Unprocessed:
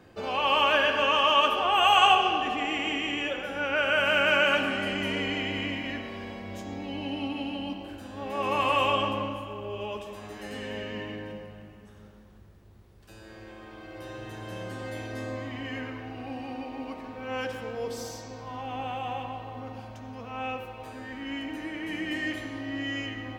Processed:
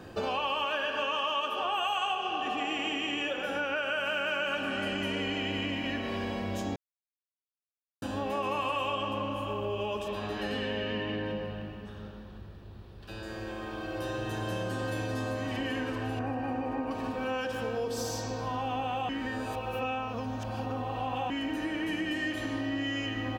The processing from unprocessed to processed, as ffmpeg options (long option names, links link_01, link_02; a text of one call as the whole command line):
ffmpeg -i in.wav -filter_complex "[0:a]asettb=1/sr,asplit=3[link_01][link_02][link_03];[link_01]atrim=end=0.654[link_04];[link_02]atrim=start=0.65:end=4.4,asetpts=PTS-STARTPTS,afade=type=in:duration=0.004:curve=qsin,afade=type=out:start_time=3.746:duration=0.004:curve=qsin,highpass=frequency=160:poles=1[link_05];[link_03]atrim=start=4.396[link_06];[link_04][link_05]acrossfade=duration=0.004:curve1=hsin:curve2=qsin[link_07];[link_07][link_06]acrossfade=duration=0.004:curve1=qsin:curve2=hsin,asettb=1/sr,asplit=3[link_08][link_09][link_10];[link_08]atrim=end=10.084[link_11];[link_09]atrim=start=10.08:end=13.23,asetpts=PTS-STARTPTS,afade=type=in:duration=0.004:curve=qsin,afade=type=out:start_time=3.146:duration=0.004:curve=qsin,highshelf=frequency=5300:width_type=q:width=1.5:gain=-9[link_12];[link_10]atrim=start=13.226[link_13];[link_11][link_12]acrossfade=duration=0.004:curve1=hsin:curve2=qsin[link_14];[link_14][link_13]acrossfade=duration=0.004:curve1=qsin:curve2=hsin,asplit=2[link_15][link_16];[link_16]afade=type=in:start_time=14.44:duration=0.01,afade=type=out:start_time=15.17:duration=0.01,aecho=0:1:390|780|1170|1560|1950|2340|2730|3120|3510|3900|4290|4680:0.446684|0.357347|0.285877|0.228702|0.182962|0.146369|0.117095|0.0936763|0.0749411|0.0599529|0.0479623|0.0383698[link_17];[link_15][link_17]amix=inputs=2:normalize=0,asettb=1/sr,asplit=3[link_18][link_19][link_20];[link_18]atrim=end=16.194[link_21];[link_19]atrim=start=16.19:end=16.91,asetpts=PTS-STARTPTS,afade=type=in:duration=0.004:curve=qsin,afade=type=out:start_time=0.716:duration=0.004:curve=qsin,highshelf=frequency=2500:width_type=q:width=1.5:gain=-10[link_22];[link_20]atrim=start=16.906[link_23];[link_21][link_22]acrossfade=duration=0.004:curve1=hsin:curve2=qsin[link_24];[link_24][link_23]acrossfade=duration=0.004:curve1=qsin:curve2=hsin,asplit=5[link_25][link_26][link_27][link_28][link_29];[link_25]atrim=end=6.76,asetpts=PTS-STARTPTS,afade=type=out:start_time=6.756:duration=0.004:curve=hsin[link_30];[link_26]atrim=start=6.76:end=8.02,asetpts=PTS-STARTPTS,volume=0[link_31];[link_27]atrim=start=8.02:end=19.092,asetpts=PTS-STARTPTS,afade=type=in:duration=0.004:curve=hsin[link_32];[link_28]atrim=start=19.088:end=21.302,asetpts=PTS-STARTPTS,areverse[link_33];[link_29]atrim=start=21.298[link_34];[link_30][link_31][link_32]concat=n=3:v=0:a=1[link_35];[link_35][link_33]acrossfade=duration=0.004:curve1=hsin:curve2=hsin[link_36];[link_36][link_34]acrossfade=duration=0.004:curve1=hsin:curve2=hsin,bandreject=frequency=2100:width=6.6,acompressor=threshold=-37dB:ratio=6,volume=7.5dB" out.wav